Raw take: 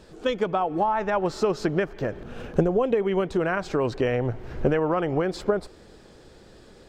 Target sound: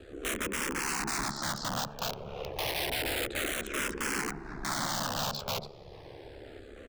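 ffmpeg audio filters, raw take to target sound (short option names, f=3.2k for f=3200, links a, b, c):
-filter_complex "[0:a]bandreject=f=60:t=h:w=6,bandreject=f=120:t=h:w=6,bandreject=f=180:t=h:w=6,bandreject=f=240:t=h:w=6,bandreject=f=300:t=h:w=6,acrossover=split=220[a][b];[a]acompressor=threshold=-44dB:ratio=5[c];[b]alimiter=limit=-20dB:level=0:latency=1:release=11[d];[c][d]amix=inputs=2:normalize=0,aeval=exprs='val(0)*sin(2*PI*35*n/s)':c=same,asplit=2[e][f];[f]adynamicsmooth=sensitivity=8:basefreq=5k,volume=1dB[g];[e][g]amix=inputs=2:normalize=0,aeval=exprs='(mod(15.8*val(0)+1,2)-1)/15.8':c=same,asplit=2[h][i];[i]adelay=1283,volume=-17dB,highshelf=f=4k:g=-28.9[j];[h][j]amix=inputs=2:normalize=0,asplit=2[k][l];[l]afreqshift=-0.3[m];[k][m]amix=inputs=2:normalize=1"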